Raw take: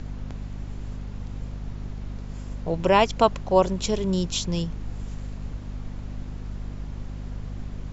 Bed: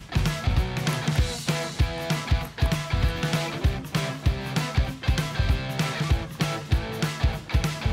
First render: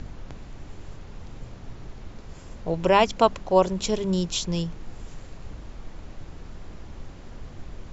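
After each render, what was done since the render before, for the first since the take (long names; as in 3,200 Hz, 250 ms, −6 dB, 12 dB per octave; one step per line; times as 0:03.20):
hum removal 50 Hz, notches 5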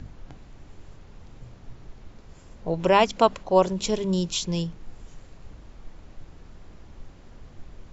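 noise reduction from a noise print 6 dB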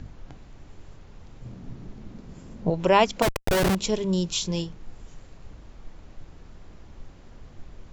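0:01.45–0:02.70: parametric band 210 Hz +12.5 dB 1.6 octaves
0:03.22–0:03.75: comparator with hysteresis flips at −31.5 dBFS
0:04.28–0:04.70: double-tracking delay 27 ms −8 dB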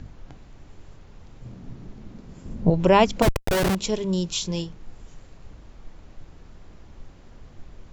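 0:02.45–0:03.47: low-shelf EQ 300 Hz +9.5 dB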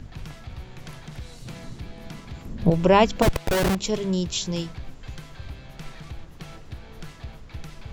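mix in bed −15.5 dB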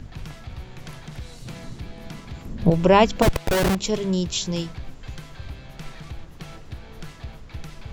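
level +1.5 dB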